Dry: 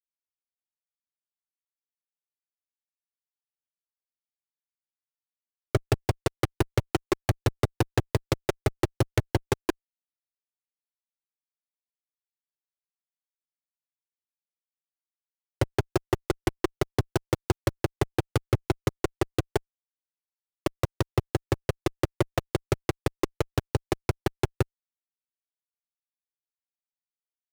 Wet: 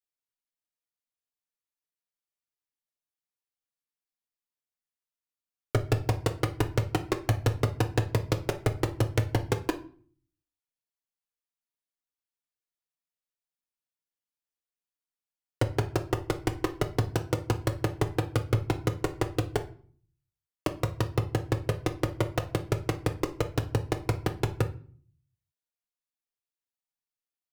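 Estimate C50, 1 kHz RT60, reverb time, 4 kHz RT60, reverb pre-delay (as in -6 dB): 14.5 dB, 0.45 s, 0.45 s, 0.35 s, 4 ms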